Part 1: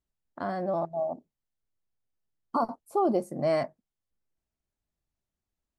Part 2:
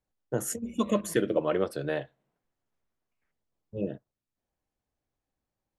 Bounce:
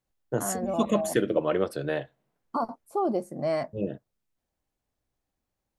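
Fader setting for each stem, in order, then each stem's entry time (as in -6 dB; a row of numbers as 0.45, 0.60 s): -1.5, +1.5 dB; 0.00, 0.00 s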